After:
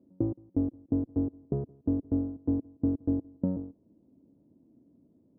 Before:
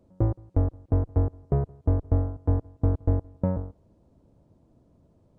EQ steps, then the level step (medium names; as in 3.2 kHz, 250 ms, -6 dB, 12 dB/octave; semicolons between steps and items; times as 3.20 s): band-pass filter 270 Hz, Q 3.1; +5.5 dB